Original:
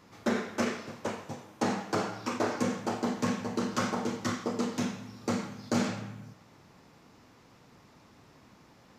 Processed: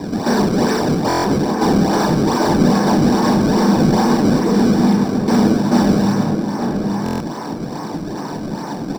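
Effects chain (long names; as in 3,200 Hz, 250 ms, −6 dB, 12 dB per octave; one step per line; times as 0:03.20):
adaptive Wiener filter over 9 samples
0:04.39–0:05.30: elliptic band-stop filter 450–2,000 Hz
mid-hump overdrive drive 38 dB, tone 2,800 Hz, clips at −15 dBFS
sample-and-hold swept by an LFO 28×, swing 160% 2.4 Hz
slap from a distant wall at 150 metres, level −6 dB
convolution reverb RT60 0.70 s, pre-delay 3 ms, DRR 6 dB
buffer that repeats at 0:01.08/0:07.04, samples 1,024, times 6
level −5.5 dB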